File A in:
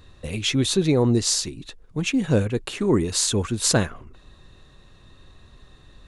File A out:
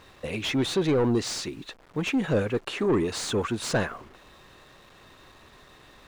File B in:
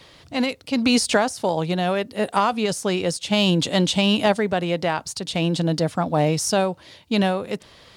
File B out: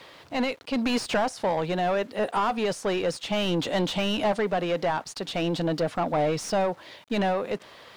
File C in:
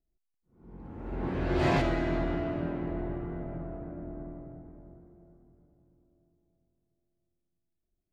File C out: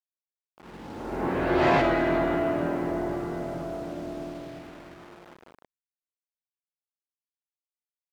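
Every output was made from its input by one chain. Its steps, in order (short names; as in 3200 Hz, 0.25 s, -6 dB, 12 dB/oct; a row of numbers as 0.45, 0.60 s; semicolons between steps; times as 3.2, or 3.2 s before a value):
bit-crush 9-bit; overdrive pedal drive 22 dB, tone 1400 Hz, clips at -5.5 dBFS; match loudness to -27 LUFS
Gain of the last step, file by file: -8.0, -9.5, -2.5 dB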